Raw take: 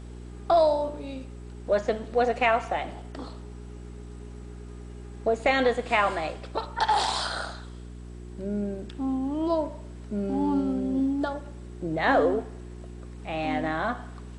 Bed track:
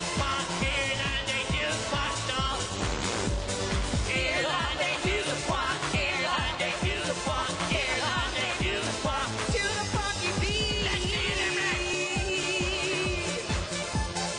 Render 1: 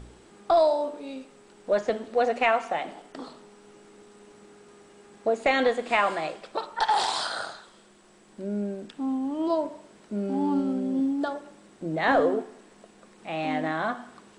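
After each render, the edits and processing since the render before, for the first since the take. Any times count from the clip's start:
hum removal 60 Hz, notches 7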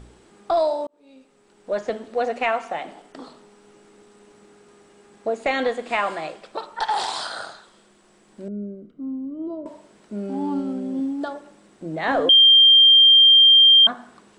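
0:00.87–0:01.87: fade in
0:08.48–0:09.66: moving average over 51 samples
0:12.29–0:13.87: beep over 3,180 Hz −8.5 dBFS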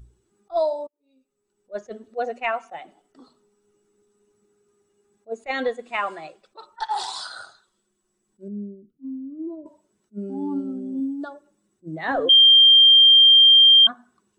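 spectral dynamics exaggerated over time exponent 1.5
level that may rise only so fast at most 480 dB per second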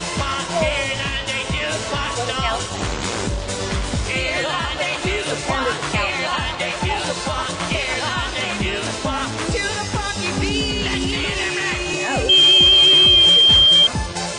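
mix in bed track +6 dB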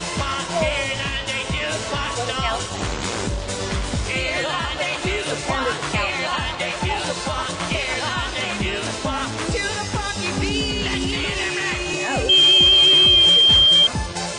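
level −1.5 dB

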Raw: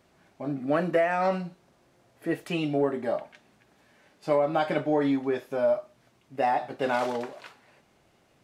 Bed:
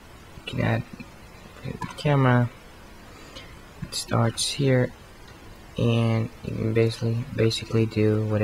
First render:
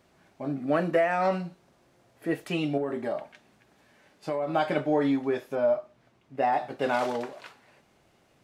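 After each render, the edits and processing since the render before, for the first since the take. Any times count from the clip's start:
0:02.77–0:04.52: downward compressor, threshold −25 dBFS
0:05.55–0:06.53: high-shelf EQ 5,000 Hz −10.5 dB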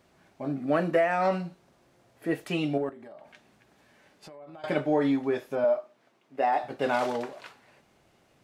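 0:02.89–0:04.64: downward compressor 8 to 1, threshold −44 dBFS
0:05.64–0:06.64: high-pass filter 270 Hz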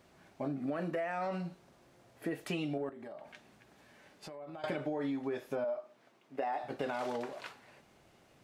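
brickwall limiter −19.5 dBFS, peak gain reduction 6.5 dB
downward compressor 6 to 1, threshold −33 dBFS, peak gain reduction 9.5 dB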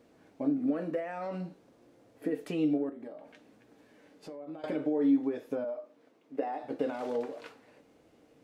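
hollow resonant body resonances 290/460 Hz, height 15 dB, ringing for 50 ms
flanger 0.54 Hz, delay 8.4 ms, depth 5.1 ms, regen +76%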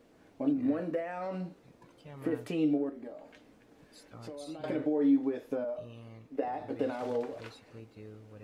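mix in bed −27.5 dB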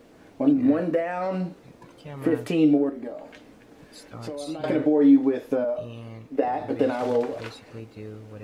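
level +9.5 dB

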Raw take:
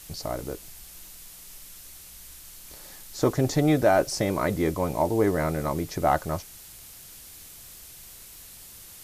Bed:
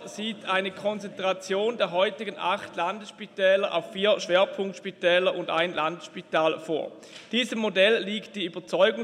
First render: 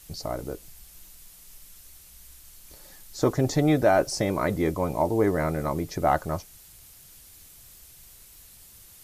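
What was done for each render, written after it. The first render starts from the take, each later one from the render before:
broadband denoise 6 dB, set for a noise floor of −46 dBFS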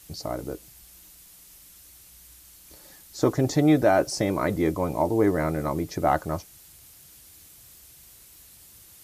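high-pass filter 53 Hz
parametric band 310 Hz +4 dB 0.28 octaves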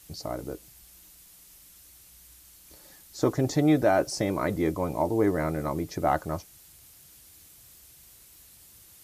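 level −2.5 dB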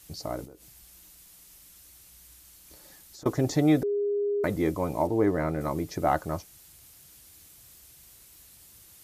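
0:00.44–0:03.26: downward compressor 8 to 1, threshold −44 dBFS
0:03.83–0:04.44: beep over 408 Hz −24 dBFS
0:05.07–0:05.61: high-shelf EQ 5,100 Hz −9.5 dB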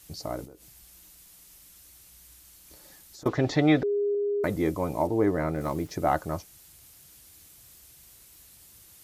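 0:03.28–0:04.15: drawn EQ curve 320 Hz 0 dB, 1,800 Hz +8 dB, 3,800 Hz +6 dB, 11,000 Hz −19 dB
0:05.51–0:05.91: gap after every zero crossing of 0.053 ms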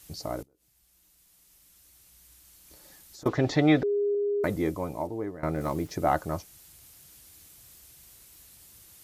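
0:00.43–0:03.30: fade in, from −21 dB
0:04.45–0:05.43: fade out, to −17 dB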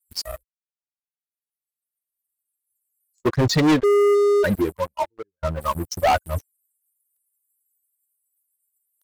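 spectral dynamics exaggerated over time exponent 3
leveller curve on the samples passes 5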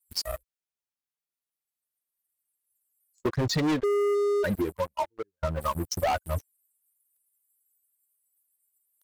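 downward compressor 5 to 1, threshold −25 dBFS, peak gain reduction 9.5 dB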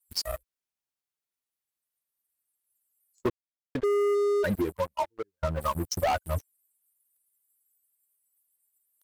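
0:03.30–0:03.75: silence

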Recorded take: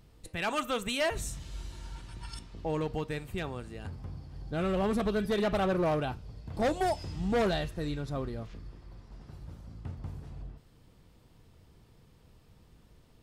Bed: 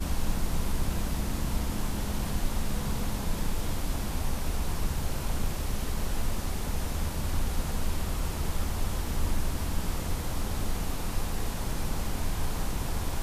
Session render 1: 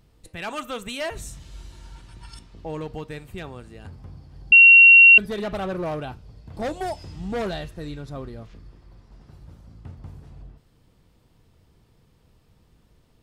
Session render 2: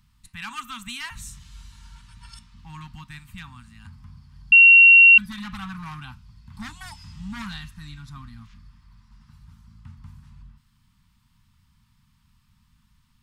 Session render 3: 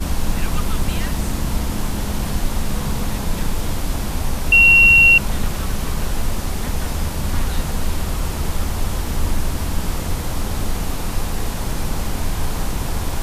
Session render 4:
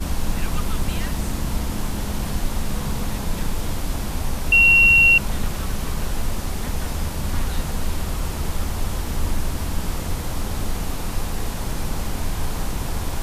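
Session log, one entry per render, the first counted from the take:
0:04.52–0:05.18: beep over 2,740 Hz −6.5 dBFS
elliptic band-stop filter 230–990 Hz, stop band 50 dB; low-shelf EQ 350 Hz −3 dB
mix in bed +8.5 dB
level −3 dB

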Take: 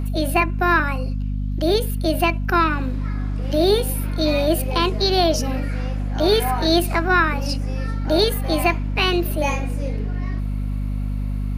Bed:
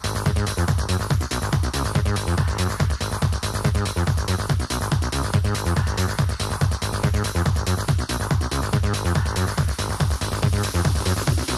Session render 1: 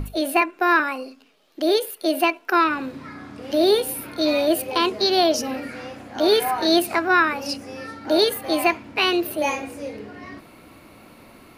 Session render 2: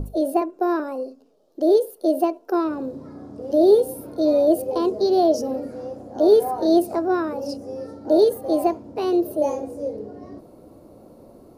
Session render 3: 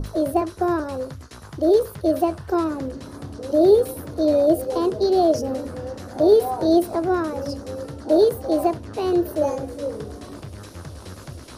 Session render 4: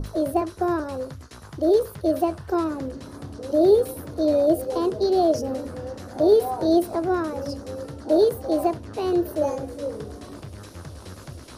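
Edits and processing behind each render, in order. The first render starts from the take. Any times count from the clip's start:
mains-hum notches 50/100/150/200/250 Hz
drawn EQ curve 250 Hz 0 dB, 530 Hz +6 dB, 2,300 Hz −26 dB, 5,400 Hz −9 dB
mix in bed −17 dB
level −2 dB

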